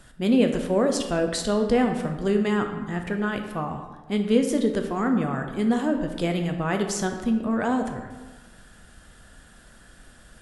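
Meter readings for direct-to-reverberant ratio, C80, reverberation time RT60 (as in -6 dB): 4.5 dB, 8.5 dB, 1.3 s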